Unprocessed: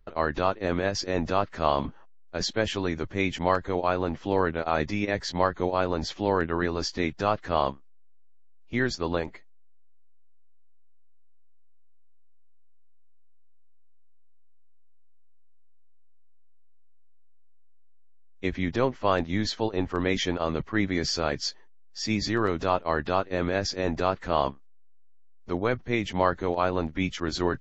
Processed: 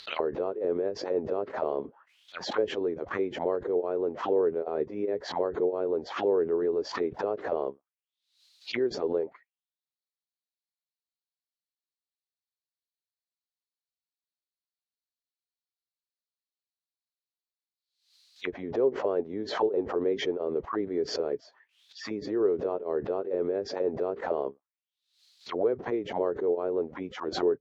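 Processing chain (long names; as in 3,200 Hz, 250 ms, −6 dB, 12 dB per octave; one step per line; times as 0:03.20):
high-pass filter 52 Hz
envelope filter 420–4,200 Hz, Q 5.9, down, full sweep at −24 dBFS
background raised ahead of every attack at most 100 dB per second
level +6.5 dB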